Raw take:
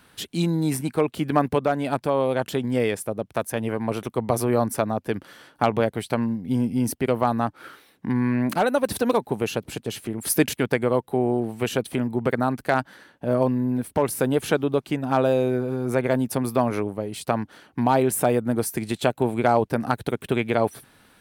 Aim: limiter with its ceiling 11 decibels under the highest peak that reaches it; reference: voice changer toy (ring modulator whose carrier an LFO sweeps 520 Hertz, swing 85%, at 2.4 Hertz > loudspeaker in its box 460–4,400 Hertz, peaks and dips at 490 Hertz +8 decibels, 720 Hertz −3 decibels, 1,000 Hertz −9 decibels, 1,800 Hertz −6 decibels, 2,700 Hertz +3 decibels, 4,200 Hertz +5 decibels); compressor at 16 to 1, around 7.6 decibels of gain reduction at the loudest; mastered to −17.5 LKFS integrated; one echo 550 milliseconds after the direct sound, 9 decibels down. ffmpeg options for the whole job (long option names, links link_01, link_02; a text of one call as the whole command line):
ffmpeg -i in.wav -af "acompressor=threshold=-22dB:ratio=16,alimiter=limit=-19.5dB:level=0:latency=1,aecho=1:1:550:0.355,aeval=exprs='val(0)*sin(2*PI*520*n/s+520*0.85/2.4*sin(2*PI*2.4*n/s))':channel_layout=same,highpass=460,equalizer=frequency=490:width_type=q:width=4:gain=8,equalizer=frequency=720:width_type=q:width=4:gain=-3,equalizer=frequency=1000:width_type=q:width=4:gain=-9,equalizer=frequency=1800:width_type=q:width=4:gain=-6,equalizer=frequency=2700:width_type=q:width=4:gain=3,equalizer=frequency=4200:width_type=q:width=4:gain=5,lowpass=frequency=4400:width=0.5412,lowpass=frequency=4400:width=1.3066,volume=18.5dB" out.wav